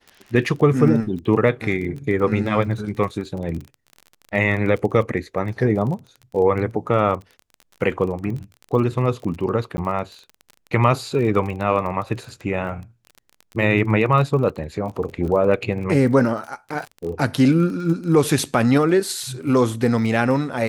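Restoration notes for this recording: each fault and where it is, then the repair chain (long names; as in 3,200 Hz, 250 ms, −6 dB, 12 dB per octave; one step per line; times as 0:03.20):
surface crackle 24 per second −29 dBFS
0:09.77–0:09.78: drop-out 10 ms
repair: click removal
repair the gap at 0:09.77, 10 ms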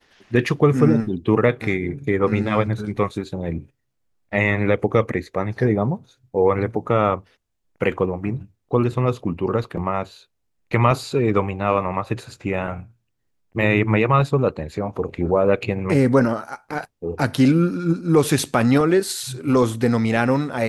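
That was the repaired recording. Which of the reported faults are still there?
none of them is left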